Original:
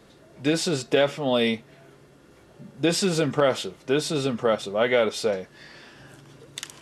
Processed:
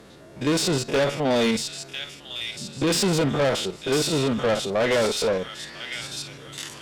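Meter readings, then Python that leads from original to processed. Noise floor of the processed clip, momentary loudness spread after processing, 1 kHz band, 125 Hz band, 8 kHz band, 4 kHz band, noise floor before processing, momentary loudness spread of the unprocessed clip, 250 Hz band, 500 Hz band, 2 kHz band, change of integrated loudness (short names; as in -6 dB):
-46 dBFS, 12 LU, +1.5 dB, +3.5 dB, +4.5 dB, +3.5 dB, -54 dBFS, 11 LU, +1.5 dB, 0.0 dB, +1.5 dB, 0.0 dB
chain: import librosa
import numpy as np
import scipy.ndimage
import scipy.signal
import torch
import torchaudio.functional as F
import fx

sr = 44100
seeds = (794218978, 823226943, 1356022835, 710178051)

y = fx.spec_steps(x, sr, hold_ms=50)
y = fx.echo_wet_highpass(y, sr, ms=1000, feedback_pct=43, hz=2800.0, wet_db=-5)
y = fx.tube_stage(y, sr, drive_db=25.0, bias=0.3)
y = y * librosa.db_to_amplitude(7.5)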